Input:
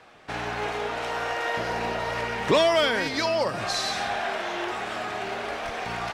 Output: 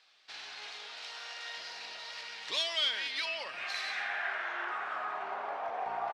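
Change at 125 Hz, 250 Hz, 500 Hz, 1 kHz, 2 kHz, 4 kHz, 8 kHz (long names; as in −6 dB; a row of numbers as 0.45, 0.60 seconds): below −30 dB, −26.0 dB, −18.5 dB, −10.0 dB, −7.0 dB, −4.0 dB, −11.5 dB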